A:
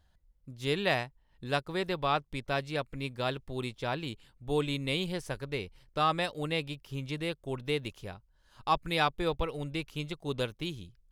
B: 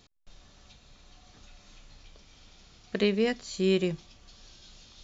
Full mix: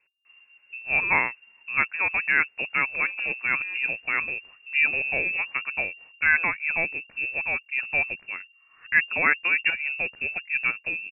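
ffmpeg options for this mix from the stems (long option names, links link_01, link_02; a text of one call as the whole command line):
ffmpeg -i stem1.wav -i stem2.wav -filter_complex "[0:a]acontrast=55,adelay=250,volume=1dB[link_01];[1:a]lowpass=frequency=1800:poles=1,volume=23.5dB,asoftclip=hard,volume=-23.5dB,volume=-7dB[link_02];[link_01][link_02]amix=inputs=2:normalize=0,lowpass=frequency=2400:width_type=q:width=0.5098,lowpass=frequency=2400:width_type=q:width=0.6013,lowpass=frequency=2400:width_type=q:width=0.9,lowpass=frequency=2400:width_type=q:width=2.563,afreqshift=-2800" out.wav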